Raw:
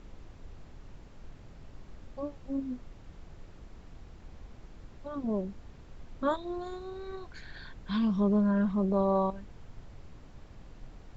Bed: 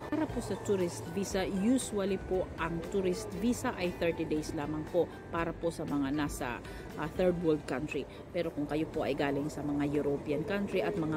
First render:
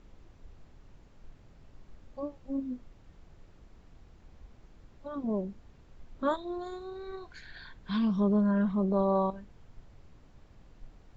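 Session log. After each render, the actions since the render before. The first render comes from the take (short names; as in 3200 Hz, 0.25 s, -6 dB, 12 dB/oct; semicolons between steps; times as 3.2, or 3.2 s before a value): noise print and reduce 6 dB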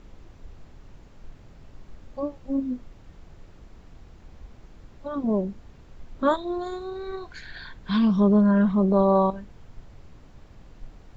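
gain +7.5 dB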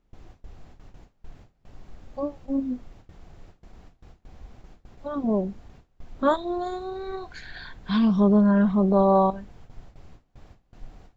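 gate with hold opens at -37 dBFS; bell 740 Hz +6 dB 0.22 oct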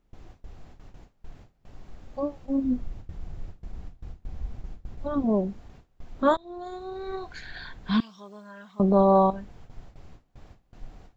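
2.64–5.23 low shelf 190 Hz +11.5 dB; 6.37–7.17 fade in, from -20 dB; 8–8.8 differentiator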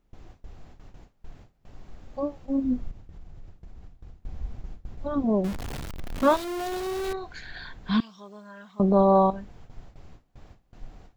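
2.91–4.18 compressor 3:1, threshold -41 dBFS; 5.44–7.13 zero-crossing step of -29 dBFS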